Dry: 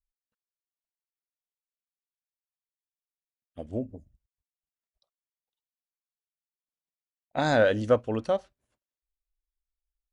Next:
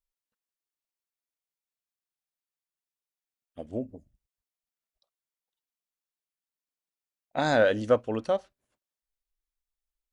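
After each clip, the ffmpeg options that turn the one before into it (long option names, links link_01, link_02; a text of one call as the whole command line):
ffmpeg -i in.wav -af "equalizer=frequency=68:width=0.7:gain=-7" out.wav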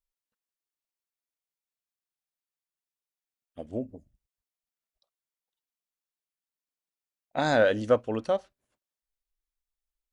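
ffmpeg -i in.wav -af anull out.wav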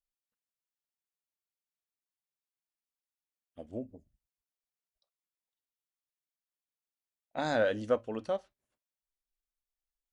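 ffmpeg -i in.wav -af "flanger=delay=3.4:depth=2:regen=-83:speed=0.28:shape=sinusoidal,volume=-2dB" out.wav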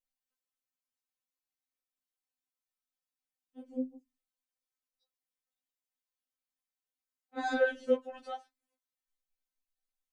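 ffmpeg -i in.wav -af "afftfilt=real='re*3.46*eq(mod(b,12),0)':imag='im*3.46*eq(mod(b,12),0)':win_size=2048:overlap=0.75" out.wav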